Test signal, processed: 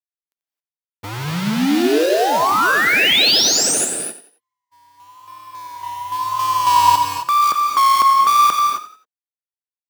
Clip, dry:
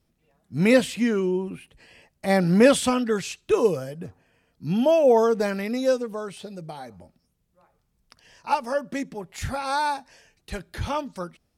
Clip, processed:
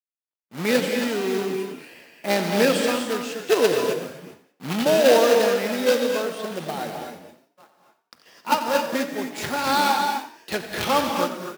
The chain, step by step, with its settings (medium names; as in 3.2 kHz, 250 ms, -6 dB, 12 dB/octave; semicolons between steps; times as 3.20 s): in parallel at -8 dB: sample-rate reducer 1.1 kHz, jitter 0%; on the sum: level rider gain up to 15 dB; companded quantiser 4-bit; peaking EQ 8.4 kHz -4 dB 1.4 oct; vibrato 0.98 Hz 70 cents; gate -44 dBFS, range -28 dB; high-pass 270 Hz 12 dB/octave; gated-style reverb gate 290 ms rising, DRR 4 dB; dynamic bell 4.2 kHz, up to +4 dB, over -30 dBFS, Q 0.96; on a send: frequency-shifting echo 89 ms, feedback 33%, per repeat +35 Hz, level -13 dB; on the sum: trim -6 dB